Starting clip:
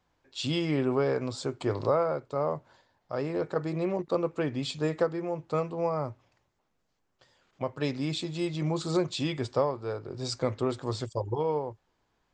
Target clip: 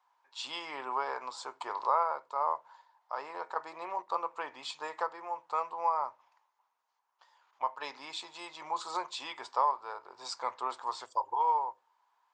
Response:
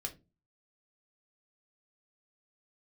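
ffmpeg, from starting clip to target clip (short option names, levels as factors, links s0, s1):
-filter_complex "[0:a]highpass=f=950:t=q:w=6.4,asettb=1/sr,asplit=3[s0][s1][s2];[s0]atrim=end=5.804[s3];[s1]atrim=start=5.8:end=8.11,asetpts=PTS-STARTPTS,afade=t=in:d=0.004:c=qsin,afade=t=out:st=2.306:d=0.004:c=qsin,bandreject=f=7700:w=9.3[s4];[s2]atrim=start=8.106[s5];[s3][s4]acrossfade=d=0.004:c1=hsin:c2=qsin[s6];[s6][s5]acrossfade=d=0.004:c1=qsin:c2=hsin,asplit=2[s7][s8];[1:a]atrim=start_sample=2205[s9];[s8][s9]afir=irnorm=-1:irlink=0,volume=0.355[s10];[s7][s10]amix=inputs=2:normalize=0,volume=0.447"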